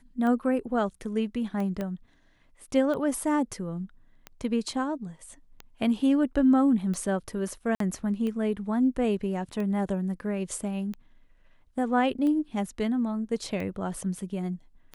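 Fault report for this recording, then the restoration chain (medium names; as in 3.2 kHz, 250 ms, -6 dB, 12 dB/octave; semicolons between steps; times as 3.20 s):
tick 45 rpm -23 dBFS
1.81 s: pop -19 dBFS
7.75–7.80 s: dropout 53 ms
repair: de-click; interpolate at 7.75 s, 53 ms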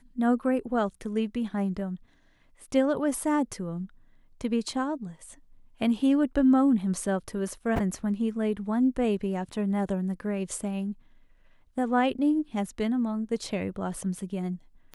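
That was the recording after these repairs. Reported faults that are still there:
tick 45 rpm
1.81 s: pop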